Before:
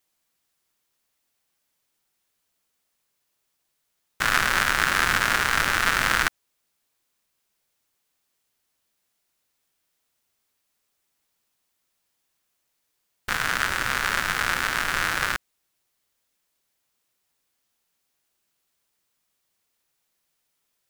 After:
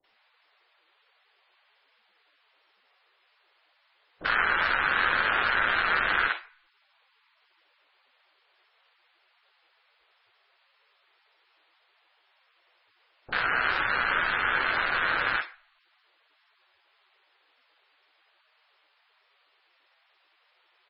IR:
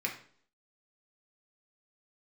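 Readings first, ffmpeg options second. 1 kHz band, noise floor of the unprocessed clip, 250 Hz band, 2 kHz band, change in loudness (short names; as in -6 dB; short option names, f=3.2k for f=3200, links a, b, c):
-1.5 dB, -76 dBFS, -6.0 dB, -1.5 dB, -2.5 dB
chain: -filter_complex "[0:a]aeval=exprs='val(0)+0.5*0.0944*sgn(val(0))':c=same,lowpass=5.4k,lowshelf=f=320:g=10,asoftclip=type=tanh:threshold=-8.5dB,agate=range=-29dB:threshold=-22dB:ratio=16:detection=peak,acrusher=bits=5:mode=log:mix=0:aa=0.000001,acrossover=split=470 4000:gain=0.0708 1 0.158[a][b][c];[a][b][c]amix=inputs=3:normalize=0,acrossover=split=610[d][e];[e]adelay=40[f];[d][f]amix=inputs=2:normalize=0,asplit=2[g][h];[1:a]atrim=start_sample=2205,adelay=54[i];[h][i]afir=irnorm=-1:irlink=0,volume=-18.5dB[j];[g][j]amix=inputs=2:normalize=0,volume=-3dB" -ar 22050 -c:a libmp3lame -b:a 16k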